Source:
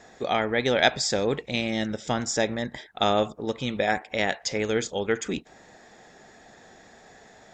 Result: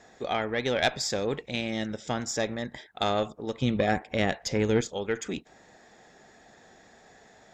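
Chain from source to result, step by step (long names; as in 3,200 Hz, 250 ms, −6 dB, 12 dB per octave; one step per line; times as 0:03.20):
0:03.62–0:04.81: low-shelf EQ 380 Hz +11 dB
tube saturation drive 8 dB, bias 0.4
level −2.5 dB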